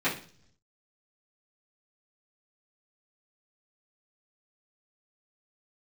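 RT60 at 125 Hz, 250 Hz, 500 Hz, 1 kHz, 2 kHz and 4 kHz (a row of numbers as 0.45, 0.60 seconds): 1.0, 0.75, 0.55, 0.40, 0.45, 0.60 seconds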